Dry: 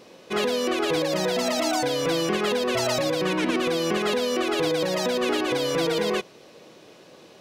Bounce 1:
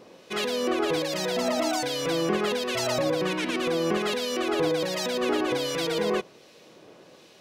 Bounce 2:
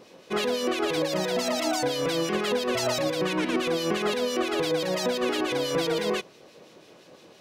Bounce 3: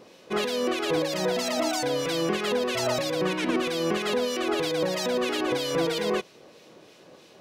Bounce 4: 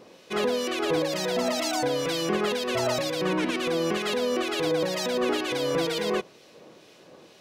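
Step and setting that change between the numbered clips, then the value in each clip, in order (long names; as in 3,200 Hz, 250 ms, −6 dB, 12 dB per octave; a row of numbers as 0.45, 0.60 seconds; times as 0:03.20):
two-band tremolo in antiphase, speed: 1.3, 5.9, 3.1, 2.1 Hertz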